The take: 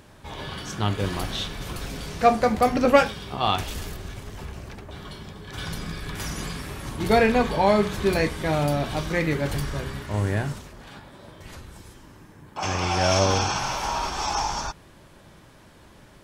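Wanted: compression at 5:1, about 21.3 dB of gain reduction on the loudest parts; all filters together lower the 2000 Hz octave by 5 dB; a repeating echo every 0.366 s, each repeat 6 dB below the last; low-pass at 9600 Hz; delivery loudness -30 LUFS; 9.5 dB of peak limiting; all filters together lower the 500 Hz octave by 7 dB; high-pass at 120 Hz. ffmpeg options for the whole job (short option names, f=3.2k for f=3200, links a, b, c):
-af "highpass=120,lowpass=9.6k,equalizer=f=500:t=o:g=-8.5,equalizer=f=2k:t=o:g=-6,acompressor=threshold=-42dB:ratio=5,alimiter=level_in=13dB:limit=-24dB:level=0:latency=1,volume=-13dB,aecho=1:1:366|732|1098|1464|1830|2196:0.501|0.251|0.125|0.0626|0.0313|0.0157,volume=15.5dB"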